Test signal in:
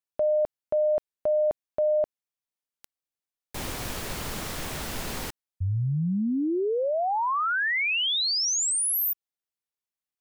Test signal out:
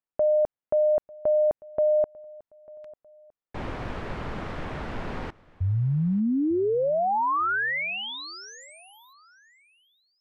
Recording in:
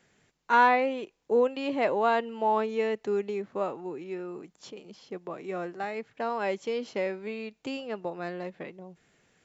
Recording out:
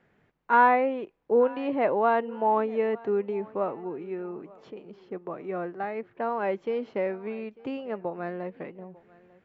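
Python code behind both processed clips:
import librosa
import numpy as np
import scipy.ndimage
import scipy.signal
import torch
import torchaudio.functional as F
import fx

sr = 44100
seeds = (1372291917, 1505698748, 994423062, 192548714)

y = scipy.signal.sosfilt(scipy.signal.butter(2, 1800.0, 'lowpass', fs=sr, output='sos'), x)
y = fx.echo_feedback(y, sr, ms=896, feedback_pct=36, wet_db=-23.0)
y = y * librosa.db_to_amplitude(2.0)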